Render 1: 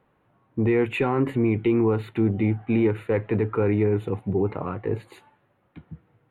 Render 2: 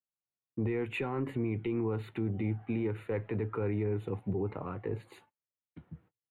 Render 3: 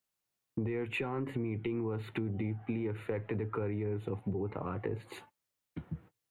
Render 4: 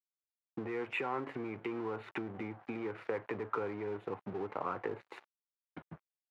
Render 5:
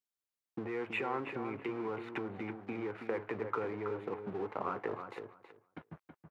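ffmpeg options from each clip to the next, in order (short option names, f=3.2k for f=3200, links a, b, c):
-filter_complex "[0:a]agate=range=-37dB:threshold=-52dB:ratio=16:detection=peak,acrossover=split=100[a][b];[b]alimiter=limit=-19dB:level=0:latency=1:release=181[c];[a][c]amix=inputs=2:normalize=0,volume=-6.5dB"
-af "acompressor=threshold=-43dB:ratio=4,volume=9dB"
-af "aeval=exprs='sgn(val(0))*max(abs(val(0))-0.00299,0)':c=same,bandpass=f=1.1k:t=q:w=0.88:csg=0,volume=6.5dB"
-filter_complex "[0:a]asplit=2[a][b];[b]adelay=324,lowpass=f=2.6k:p=1,volume=-7.5dB,asplit=2[c][d];[d]adelay=324,lowpass=f=2.6k:p=1,volume=0.17,asplit=2[e][f];[f]adelay=324,lowpass=f=2.6k:p=1,volume=0.17[g];[a][c][e][g]amix=inputs=4:normalize=0"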